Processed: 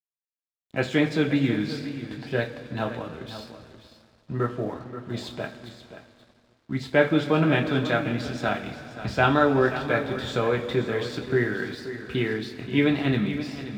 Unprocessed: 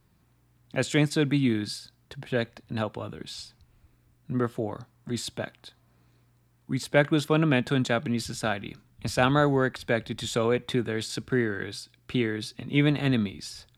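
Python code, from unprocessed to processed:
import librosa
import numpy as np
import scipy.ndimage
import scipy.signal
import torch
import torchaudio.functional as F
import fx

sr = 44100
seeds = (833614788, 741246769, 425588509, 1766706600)

p1 = scipy.signal.sosfilt(scipy.signal.butter(2, 3600.0, 'lowpass', fs=sr, output='sos'), x)
p2 = fx.rev_double_slope(p1, sr, seeds[0], early_s=0.24, late_s=4.1, knee_db=-19, drr_db=0.0)
p3 = np.sign(p2) * np.maximum(np.abs(p2) - 10.0 ** (-51.5 / 20.0), 0.0)
p4 = fx.wow_flutter(p3, sr, seeds[1], rate_hz=2.1, depth_cents=15.0)
y = p4 + fx.echo_single(p4, sr, ms=530, db=-12.5, dry=0)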